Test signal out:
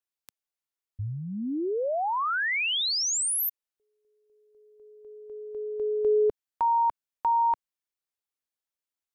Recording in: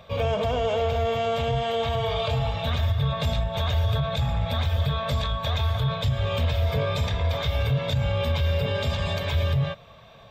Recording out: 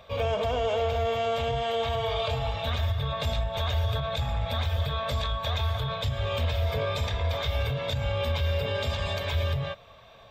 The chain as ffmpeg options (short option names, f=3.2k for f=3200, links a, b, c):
-af "equalizer=f=160:t=o:w=1.1:g=-8,volume=-1.5dB"